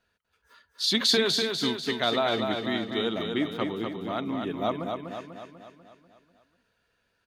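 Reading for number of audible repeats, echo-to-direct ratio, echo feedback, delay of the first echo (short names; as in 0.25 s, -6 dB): 6, -3.5 dB, 54%, 0.246 s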